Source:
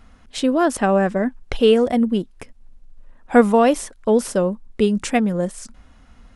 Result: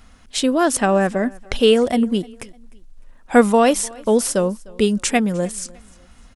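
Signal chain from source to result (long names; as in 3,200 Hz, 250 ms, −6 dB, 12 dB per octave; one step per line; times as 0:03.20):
high-shelf EQ 3,100 Hz +9.5 dB
on a send: repeating echo 303 ms, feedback 35%, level −24 dB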